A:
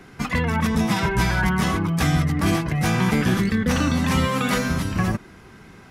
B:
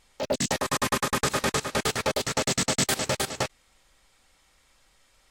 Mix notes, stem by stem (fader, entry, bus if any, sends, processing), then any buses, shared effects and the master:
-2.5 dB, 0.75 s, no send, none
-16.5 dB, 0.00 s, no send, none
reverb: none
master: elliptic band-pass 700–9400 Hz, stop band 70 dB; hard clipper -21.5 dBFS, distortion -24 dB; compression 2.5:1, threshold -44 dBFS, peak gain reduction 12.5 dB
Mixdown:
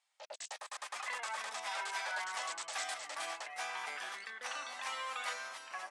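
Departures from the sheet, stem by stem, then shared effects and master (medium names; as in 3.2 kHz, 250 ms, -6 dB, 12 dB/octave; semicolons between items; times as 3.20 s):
stem A -2.5 dB -> -13.5 dB; master: missing compression 2.5:1, threshold -44 dBFS, peak gain reduction 12.5 dB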